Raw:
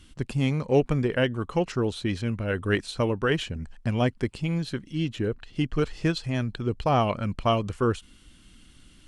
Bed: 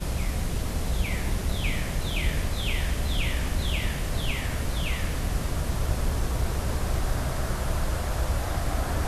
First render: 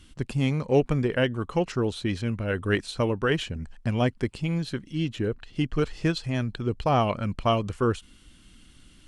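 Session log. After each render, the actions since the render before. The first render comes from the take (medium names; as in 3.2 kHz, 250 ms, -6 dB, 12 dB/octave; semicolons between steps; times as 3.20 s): no audible change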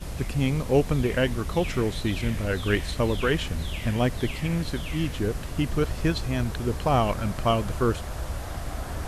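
add bed -5.5 dB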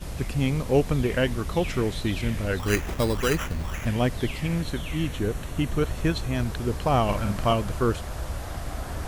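2.59–3.86 s: sample-rate reducer 4.4 kHz; 4.61–6.35 s: band-stop 4.9 kHz, Q 6.2; 7.04–7.53 s: doubling 49 ms -5 dB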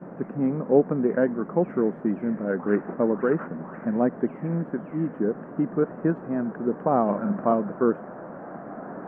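elliptic band-pass 190–1600 Hz, stop band 40 dB; tilt shelf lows +5.5 dB, about 940 Hz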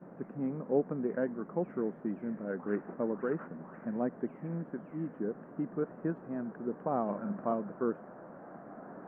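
trim -10.5 dB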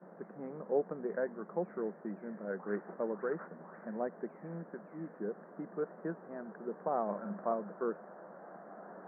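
elliptic band-pass 190–1900 Hz, stop band 40 dB; peaking EQ 260 Hz -12 dB 0.5 oct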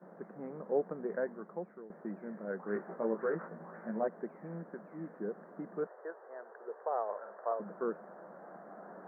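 1.23–1.90 s: fade out, to -17 dB; 2.74–4.08 s: doubling 18 ms -2.5 dB; 5.87–7.60 s: Chebyshev band-pass 440–1900 Hz, order 3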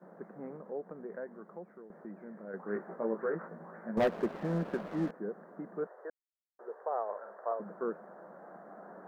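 0.56–2.54 s: compression 1.5:1, threshold -49 dBFS; 3.97–5.11 s: waveshaping leveller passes 3; 6.10–6.59 s: mute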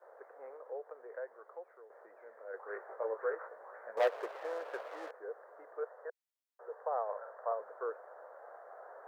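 elliptic high-pass 470 Hz, stop band 70 dB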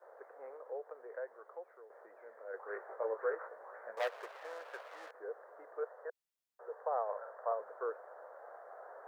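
3.95–5.15 s: high-pass 1.2 kHz 6 dB/octave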